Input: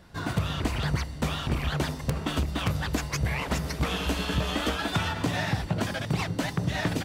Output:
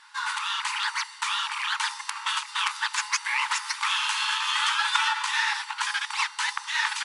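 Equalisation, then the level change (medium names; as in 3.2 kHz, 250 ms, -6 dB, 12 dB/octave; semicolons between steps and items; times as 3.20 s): brick-wall FIR band-pass 820–11000 Hz; +7.5 dB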